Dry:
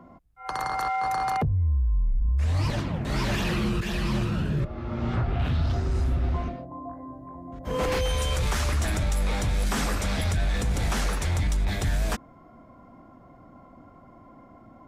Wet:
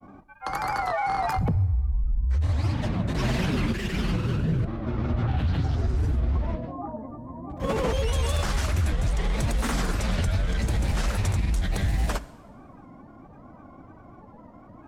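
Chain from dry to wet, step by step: bass shelf 380 Hz +3.5 dB; compression, threshold -22 dBFS, peak gain reduction 5 dB; granulator, pitch spread up and down by 3 st; two-slope reverb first 0.94 s, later 2.6 s, from -18 dB, DRR 15 dB; warped record 45 rpm, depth 100 cents; trim +2 dB

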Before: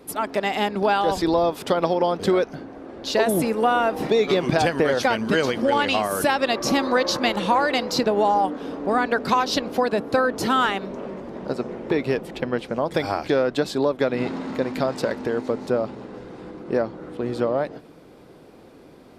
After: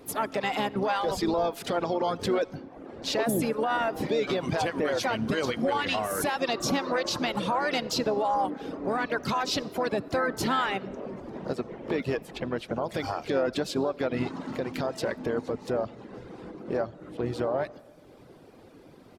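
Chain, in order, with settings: reverb removal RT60 0.8 s; peaking EQ 110 Hz +6 dB 0.27 oct; peak limiter -16.5 dBFS, peak gain reduction 9.5 dB; harmony voices -7 st -12 dB, +4 st -17 dB, +5 st -16 dB; on a send: reverberation RT60 1.6 s, pre-delay 30 ms, DRR 21 dB; on the sum: trim -2.5 dB

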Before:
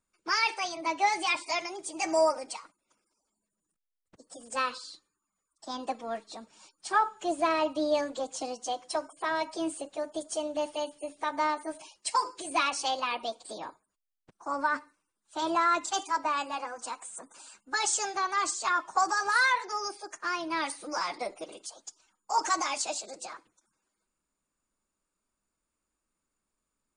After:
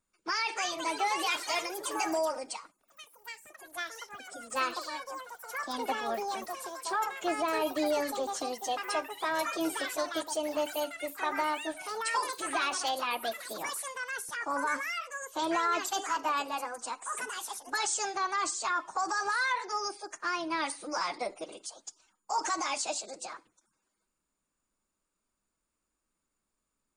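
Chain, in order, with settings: peak limiter -22 dBFS, peak gain reduction 9 dB; ever faster or slower copies 357 ms, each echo +5 st, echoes 3, each echo -6 dB

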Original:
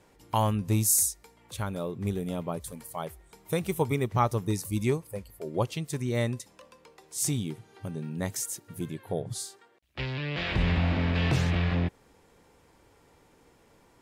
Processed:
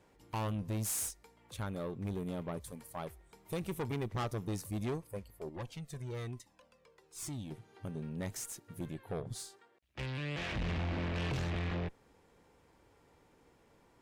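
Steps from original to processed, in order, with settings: treble shelf 4.5 kHz -5 dB; valve stage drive 29 dB, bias 0.5; 5.49–7.51 s: Shepard-style flanger falling 1.1 Hz; trim -3 dB

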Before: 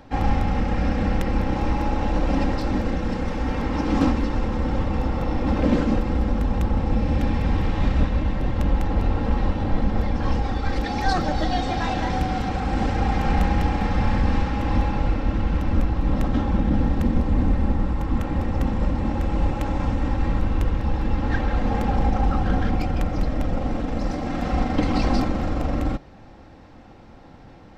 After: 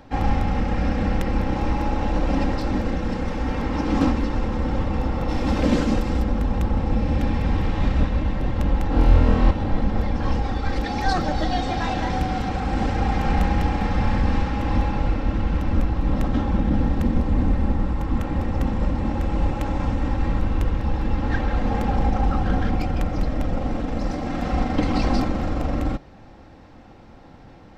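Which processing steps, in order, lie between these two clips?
5.28–6.22 s: treble shelf 3.5 kHz -> 4.8 kHz +12 dB; 8.89–9.51 s: flutter echo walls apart 4.2 m, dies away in 0.9 s

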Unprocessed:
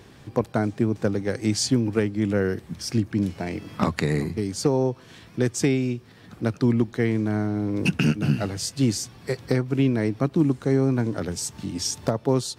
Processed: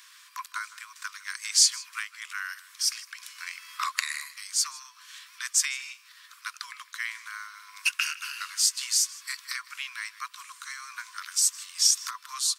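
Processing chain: Chebyshev high-pass 1 kHz, order 10; treble shelf 4.2 kHz +10.5 dB; echo from a far wall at 27 m, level -18 dB

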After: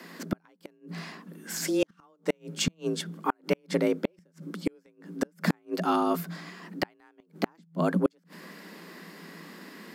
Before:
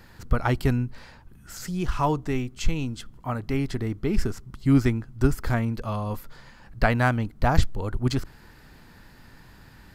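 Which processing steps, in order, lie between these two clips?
bass shelf 210 Hz -5.5 dB; frequency shift +160 Hz; inverted gate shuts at -19 dBFS, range -42 dB; trim +6 dB

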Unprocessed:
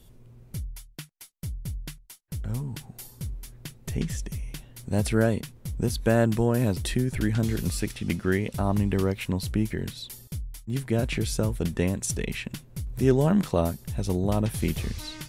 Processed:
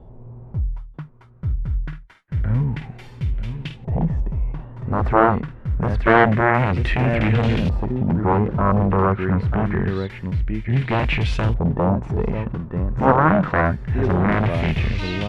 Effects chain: delay 940 ms -11.5 dB; Chebyshev shaper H 3 -14 dB, 7 -10 dB, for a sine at -7 dBFS; LFO low-pass saw up 0.26 Hz 780–3000 Hz; harmonic-percussive split harmonic +9 dB; trim -1 dB

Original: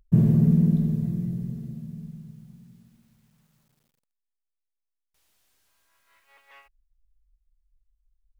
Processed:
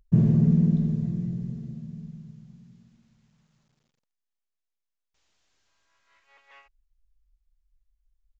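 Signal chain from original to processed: resampled via 16 kHz; trim -1 dB

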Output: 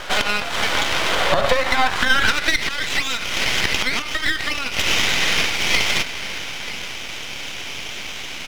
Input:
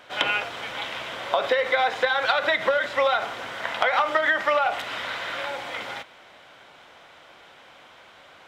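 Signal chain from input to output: bass shelf 390 Hz -12 dB; echo from a far wall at 160 m, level -15 dB; compression 12:1, threshold -35 dBFS, peak gain reduction 17.5 dB; high-pass sweep 120 Hz -> 2.5 kHz, 0.35–2.55 s; half-wave rectifier; loudness maximiser +23.5 dB; trim -1 dB

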